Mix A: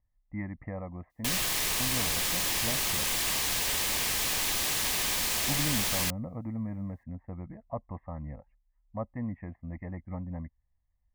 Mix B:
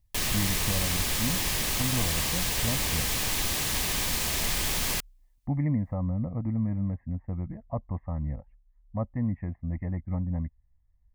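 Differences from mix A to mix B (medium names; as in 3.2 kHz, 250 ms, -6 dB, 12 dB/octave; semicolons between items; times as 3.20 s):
background: entry -1.10 s; master: add bass shelf 230 Hz +10.5 dB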